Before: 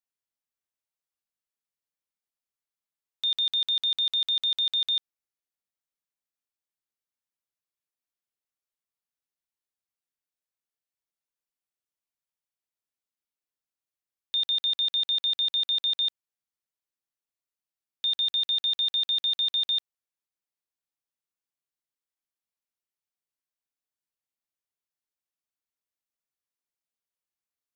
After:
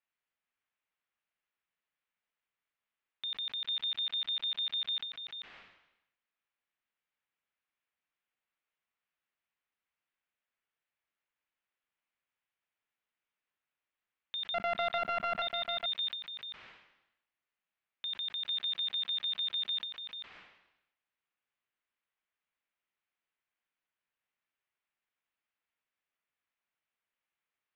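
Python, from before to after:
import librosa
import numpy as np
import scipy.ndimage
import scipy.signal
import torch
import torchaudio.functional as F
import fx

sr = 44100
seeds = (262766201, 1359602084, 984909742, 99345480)

p1 = fx.sample_sort(x, sr, block=64, at=(14.54, 15.42))
p2 = fx.over_compress(p1, sr, threshold_db=-32.0, ratio=-0.5)
p3 = p1 + (p2 * librosa.db_to_amplitude(-0.5))
p4 = fx.tilt_shelf(p3, sr, db=-6.0, hz=910.0)
p5 = 10.0 ** (-11.5 / 20.0) * np.tanh(p4 / 10.0 ** (-11.5 / 20.0))
p6 = scipy.signal.sosfilt(scipy.signal.butter(4, 2700.0, 'lowpass', fs=sr, output='sos'), p5)
p7 = fx.peak_eq(p6, sr, hz=200.0, db=2.5, octaves=0.31)
p8 = p7 + fx.echo_single(p7, sr, ms=439, db=-6.0, dry=0)
p9 = fx.sustainer(p8, sr, db_per_s=67.0)
y = p9 * librosa.db_to_amplitude(-7.0)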